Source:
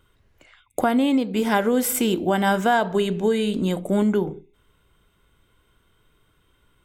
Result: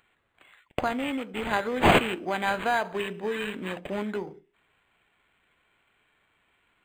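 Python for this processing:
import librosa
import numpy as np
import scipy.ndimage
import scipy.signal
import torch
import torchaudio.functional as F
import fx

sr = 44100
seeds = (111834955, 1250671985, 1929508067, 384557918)

y = fx.tilt_eq(x, sr, slope=4.0)
y = np.interp(np.arange(len(y)), np.arange(len(y))[::8], y[::8])
y = y * 10.0 ** (-4.5 / 20.0)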